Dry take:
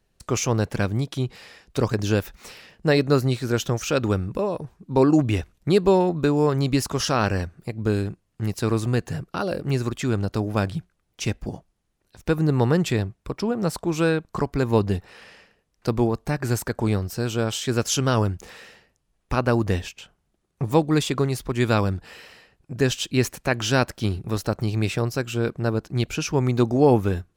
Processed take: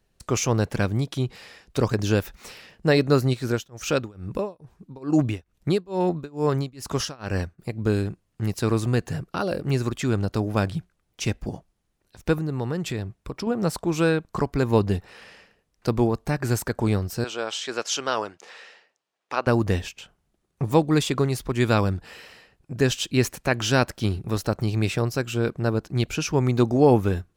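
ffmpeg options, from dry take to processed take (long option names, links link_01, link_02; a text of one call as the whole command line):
ffmpeg -i in.wav -filter_complex "[0:a]asplit=3[link_01][link_02][link_03];[link_01]afade=type=out:start_time=3.33:duration=0.02[link_04];[link_02]tremolo=f=2.3:d=0.97,afade=type=in:start_time=3.33:duration=0.02,afade=type=out:start_time=7.58:duration=0.02[link_05];[link_03]afade=type=in:start_time=7.58:duration=0.02[link_06];[link_04][link_05][link_06]amix=inputs=3:normalize=0,asettb=1/sr,asplit=3[link_07][link_08][link_09];[link_07]atrim=end=12.384[link_10];[link_08]atrim=start=12.38:end=13.47,asetpts=PTS-STARTPTS,afade=type=in:duration=0.004:curve=qsin,afade=type=out:start_time=1.086:duration=0.004:curve=qsin,acompressor=threshold=-29dB:ratio=2:attack=3.2:release=140:knee=1:detection=peak[link_11];[link_09]atrim=start=13.466[link_12];[link_10][link_11]acrossfade=duration=0.004:curve1=hsin:curve2=qsin[link_13];[link_13][link_12]acrossfade=duration=0.004:curve1=qsin:curve2=hsin,asettb=1/sr,asplit=3[link_14][link_15][link_16];[link_14]atrim=end=17.244[link_17];[link_15]atrim=start=17.24:end=19.47,asetpts=PTS-STARTPTS,afade=type=in:duration=0.004:curve=qsin,afade=type=out:start_time=2.226:duration=0.004:curve=qsin,highpass=520,lowpass=6100[link_18];[link_16]atrim=start=19.466[link_19];[link_17][link_18]acrossfade=duration=0.004:curve1=hsin:curve2=qsin[link_20];[link_20][link_19]acrossfade=duration=0.004:curve1=qsin:curve2=hsin" out.wav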